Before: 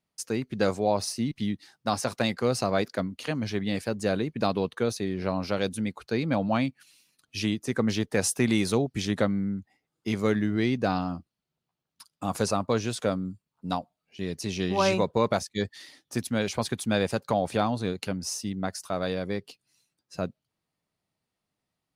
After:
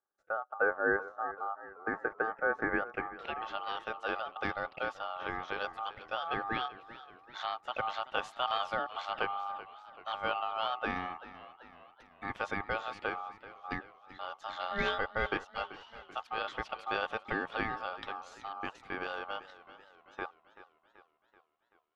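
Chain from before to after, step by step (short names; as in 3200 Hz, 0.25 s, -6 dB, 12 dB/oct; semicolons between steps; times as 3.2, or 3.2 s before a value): low-pass sweep 570 Hz -> 2200 Hz, 2.35–3.52; ring modulator 1000 Hz; warbling echo 0.385 s, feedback 55%, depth 77 cents, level -16 dB; gain -7 dB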